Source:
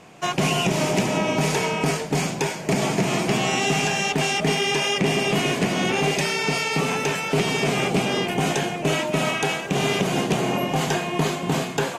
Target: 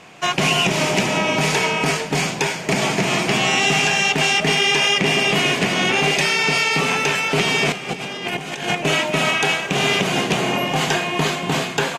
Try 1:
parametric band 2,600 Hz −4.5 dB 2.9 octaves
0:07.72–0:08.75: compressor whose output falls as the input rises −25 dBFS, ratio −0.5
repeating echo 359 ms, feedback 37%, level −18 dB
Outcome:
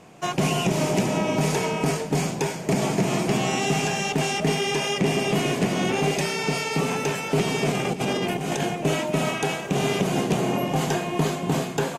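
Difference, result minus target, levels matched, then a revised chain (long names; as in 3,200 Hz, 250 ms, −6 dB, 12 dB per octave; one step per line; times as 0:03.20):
2,000 Hz band −5.0 dB
parametric band 2,600 Hz +7.5 dB 2.9 octaves
0:07.72–0:08.75: compressor whose output falls as the input rises −25 dBFS, ratio −0.5
repeating echo 359 ms, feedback 37%, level −18 dB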